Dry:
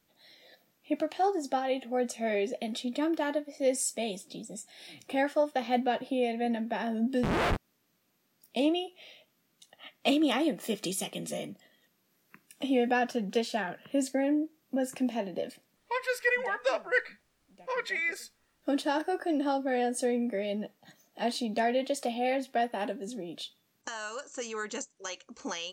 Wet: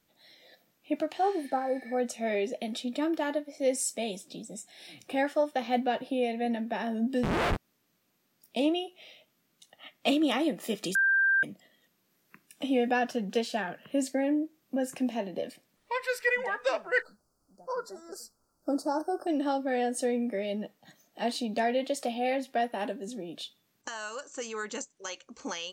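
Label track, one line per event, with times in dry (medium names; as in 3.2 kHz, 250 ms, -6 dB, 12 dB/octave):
1.240000	1.920000	spectral replace 1.6–8.7 kHz
10.950000	11.430000	bleep 1.58 kHz -21 dBFS
17.020000	19.270000	Chebyshev band-stop 1.4–4.6 kHz, order 4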